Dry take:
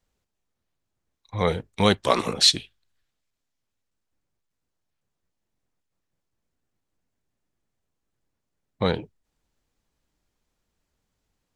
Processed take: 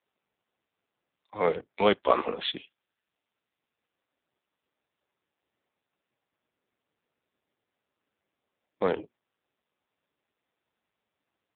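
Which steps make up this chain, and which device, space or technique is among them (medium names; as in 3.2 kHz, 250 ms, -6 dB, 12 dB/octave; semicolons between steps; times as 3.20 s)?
telephone (band-pass 280–3200 Hz; AMR-NB 5.9 kbps 8 kHz)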